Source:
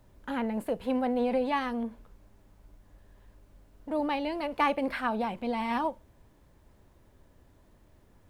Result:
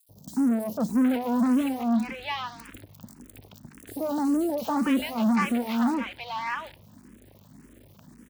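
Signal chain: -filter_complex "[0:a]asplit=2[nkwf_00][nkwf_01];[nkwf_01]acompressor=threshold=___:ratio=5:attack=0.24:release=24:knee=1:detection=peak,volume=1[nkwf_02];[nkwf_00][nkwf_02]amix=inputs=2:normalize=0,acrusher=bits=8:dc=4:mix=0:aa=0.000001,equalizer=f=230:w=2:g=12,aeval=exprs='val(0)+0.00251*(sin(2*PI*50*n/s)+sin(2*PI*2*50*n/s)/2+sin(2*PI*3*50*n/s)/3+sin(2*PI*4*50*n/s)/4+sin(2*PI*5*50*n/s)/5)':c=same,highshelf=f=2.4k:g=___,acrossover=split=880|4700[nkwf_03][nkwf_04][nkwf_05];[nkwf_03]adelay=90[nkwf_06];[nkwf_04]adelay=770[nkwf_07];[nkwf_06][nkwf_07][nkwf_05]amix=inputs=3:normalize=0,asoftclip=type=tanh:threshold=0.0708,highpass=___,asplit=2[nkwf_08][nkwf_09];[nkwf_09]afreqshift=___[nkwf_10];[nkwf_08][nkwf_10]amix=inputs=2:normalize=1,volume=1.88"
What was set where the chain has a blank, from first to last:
0.0112, 5, 93, 1.8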